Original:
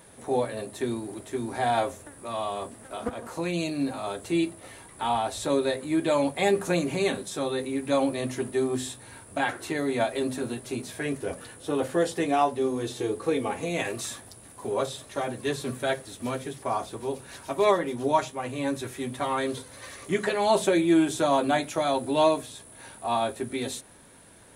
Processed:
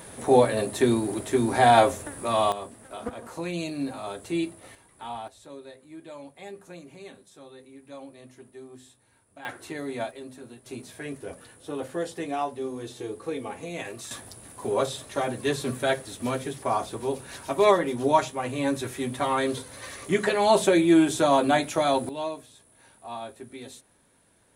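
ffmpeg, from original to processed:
ffmpeg -i in.wav -af "asetnsamples=nb_out_samples=441:pad=0,asendcmd='2.52 volume volume -2.5dB;4.75 volume volume -10dB;5.28 volume volume -18.5dB;9.45 volume volume -6dB;10.11 volume volume -13dB;10.66 volume volume -6dB;14.11 volume volume 2.5dB;22.09 volume volume -10.5dB',volume=8dB" out.wav

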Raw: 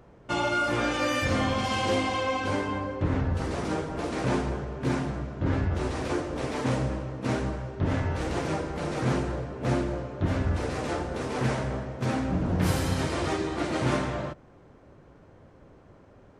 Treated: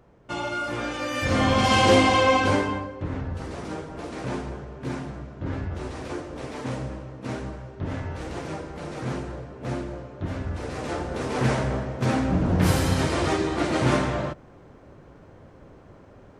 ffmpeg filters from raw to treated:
ffmpeg -i in.wav -af "volume=17.5dB,afade=type=in:start_time=1.11:duration=0.64:silence=0.251189,afade=type=out:start_time=2.35:duration=0.56:silence=0.223872,afade=type=in:start_time=10.54:duration=0.99:silence=0.375837" out.wav

